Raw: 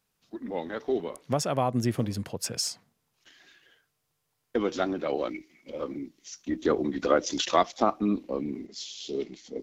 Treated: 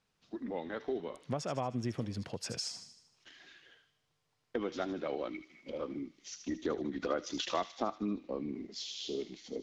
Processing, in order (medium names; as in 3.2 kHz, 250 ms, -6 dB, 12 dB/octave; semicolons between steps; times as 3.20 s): low-pass 5.6 kHz 12 dB/octave; compression 2:1, threshold -39 dBFS, peak gain reduction 12.5 dB; feedback echo behind a high-pass 77 ms, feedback 54%, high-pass 2.5 kHz, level -8 dB